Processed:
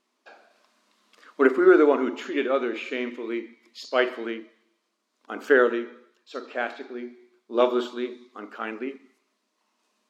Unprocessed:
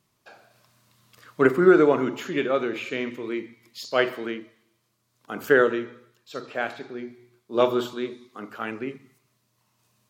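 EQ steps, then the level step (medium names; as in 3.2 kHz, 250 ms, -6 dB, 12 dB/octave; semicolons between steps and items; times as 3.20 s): brick-wall FIR high-pass 210 Hz; distance through air 62 m; 0.0 dB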